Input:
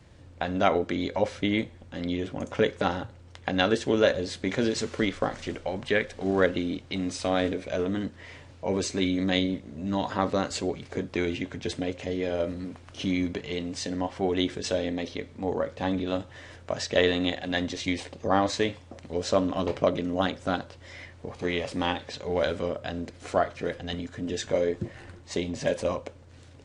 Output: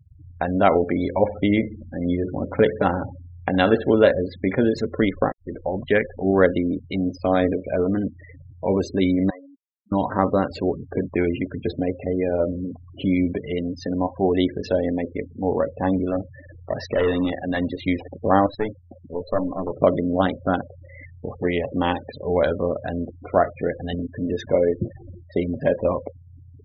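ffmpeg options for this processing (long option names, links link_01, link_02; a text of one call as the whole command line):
ffmpeg -i in.wav -filter_complex "[0:a]asettb=1/sr,asplit=3[link_01][link_02][link_03];[link_01]atrim=end=0.744[link_04];[link_02]atrim=start=0.74:end=3.93,asetpts=PTS-STARTPTS,afade=type=in:duration=0.004:curve=qsin,afade=type=out:start_time=3.186:duration=0.004:curve=qsin,aecho=1:1:69|138|207|276|345:0.178|0.0925|0.0481|0.025|0.013,atrim=end_sample=140679[link_05];[link_03]atrim=start=3.926[link_06];[link_04][link_05]acrossfade=duration=0.004:curve1=hsin:curve2=qsin[link_07];[link_07][link_06]acrossfade=duration=0.004:curve1=qsin:curve2=hsin,asettb=1/sr,asplit=3[link_08][link_09][link_10];[link_08]atrim=end=9.304[link_11];[link_09]atrim=start=9.3:end=9.92,asetpts=PTS-STARTPTS,afade=type=in:duration=0.004:curve=qsin,afade=type=out:start_time=0.616:duration=0.004:curve=qsin,bandpass=frequency=1100:width_type=q:width=4.7[link_12];[link_10]atrim=start=9.916[link_13];[link_11][link_12]acrossfade=duration=0.004:curve1=hsin:curve2=qsin[link_14];[link_14][link_13]acrossfade=duration=0.004:curve1=qsin:curve2=hsin,asettb=1/sr,asplit=3[link_15][link_16][link_17];[link_15]atrim=end=15.964[link_18];[link_16]atrim=start=15.96:end=17.79,asetpts=PTS-STARTPTS,afade=type=in:duration=0.004:curve=qsin,afade=type=out:start_time=1.826:duration=0.004:curve=qsin,asoftclip=type=hard:threshold=-22.5dB[link_19];[link_17]atrim=start=17.786[link_20];[link_18][link_19]acrossfade=duration=0.004:curve1=hsin:curve2=qsin[link_21];[link_21][link_20]acrossfade=duration=0.004:curve1=qsin:curve2=hsin,asettb=1/sr,asplit=3[link_22][link_23][link_24];[link_22]atrim=end=18.464[link_25];[link_23]atrim=start=18.46:end=19.8,asetpts=PTS-STARTPTS,afade=type=in:duration=0.004:curve=qsin,afade=type=out:start_time=1.336:duration=0.004:curve=qsin,aeval=exprs='(tanh(7.94*val(0)+0.8)-tanh(0.8))/7.94':channel_layout=same[link_26];[link_24]atrim=start=19.796[link_27];[link_25][link_26]acrossfade=duration=0.004:curve1=hsin:curve2=qsin[link_28];[link_28][link_27]acrossfade=duration=0.004:curve1=qsin:curve2=hsin,asplit=2[link_29][link_30];[link_29]atrim=end=5.32,asetpts=PTS-STARTPTS,afade=type=out:start_time=5.316:duration=0.004:curve=hsin[link_31];[link_30]atrim=start=5.32,asetpts=PTS-STARTPTS,afade=type=in:duration=0.5:curve=qsin[link_32];[link_31][link_32]concat=n=2:v=0:a=1,lowpass=frequency=1600:poles=1,afftfilt=real='re*gte(hypot(re,im),0.0158)':imag='im*gte(hypot(re,im),0.0158)':win_size=1024:overlap=0.75,volume=7dB" out.wav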